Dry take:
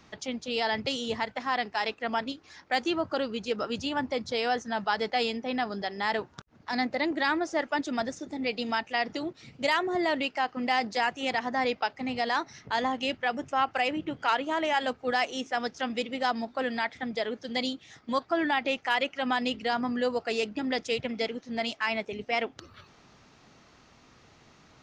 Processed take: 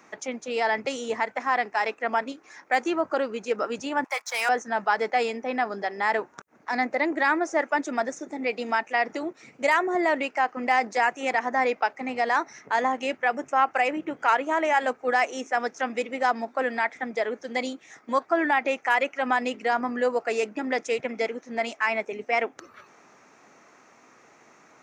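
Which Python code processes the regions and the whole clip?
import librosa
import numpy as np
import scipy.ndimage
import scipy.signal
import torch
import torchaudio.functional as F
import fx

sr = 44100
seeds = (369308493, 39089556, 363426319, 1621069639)

y = fx.chain(x, sr, fx.highpass(hz=860.0, slope=24),
    fx.leveller(passes=2), at=(4.04, 4.49))
y = scipy.signal.sosfilt(scipy.signal.butter(2, 320.0, 'highpass', fs=sr, output='sos'), y)
y = fx.band_shelf(y, sr, hz=3800.0, db=-11.5, octaves=1.0)
y = y * librosa.db_to_amplitude(5.0)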